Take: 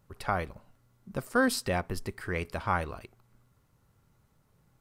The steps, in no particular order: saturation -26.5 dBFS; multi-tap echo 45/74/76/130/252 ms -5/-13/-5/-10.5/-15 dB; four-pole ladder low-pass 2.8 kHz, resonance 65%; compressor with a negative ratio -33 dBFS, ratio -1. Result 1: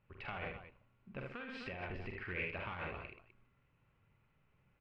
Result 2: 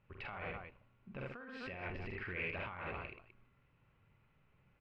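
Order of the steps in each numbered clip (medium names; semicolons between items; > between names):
saturation > multi-tap echo > compressor with a negative ratio > four-pole ladder low-pass; multi-tap echo > compressor with a negative ratio > saturation > four-pole ladder low-pass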